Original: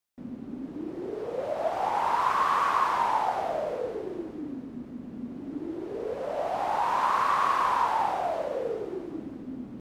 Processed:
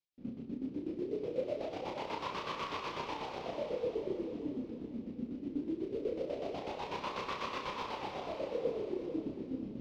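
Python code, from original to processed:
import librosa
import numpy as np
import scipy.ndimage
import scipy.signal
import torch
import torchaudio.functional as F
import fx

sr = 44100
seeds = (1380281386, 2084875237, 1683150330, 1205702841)

p1 = scipy.signal.sosfilt(scipy.signal.butter(4, 5400.0, 'lowpass', fs=sr, output='sos'), x)
p2 = fx.band_shelf(p1, sr, hz=1100.0, db=-14.0, octaves=1.7)
p3 = np.sign(p2) * np.maximum(np.abs(p2) - 10.0 ** (-55.0 / 20.0), 0.0)
p4 = p2 + (p3 * 10.0 ** (-3.5 / 20.0))
p5 = fx.chopper(p4, sr, hz=8.1, depth_pct=65, duty_pct=40)
p6 = fx.doubler(p5, sr, ms=31.0, db=-4.0)
p7 = fx.echo_feedback(p6, sr, ms=442, feedback_pct=42, wet_db=-10)
y = p7 * 10.0 ** (-5.5 / 20.0)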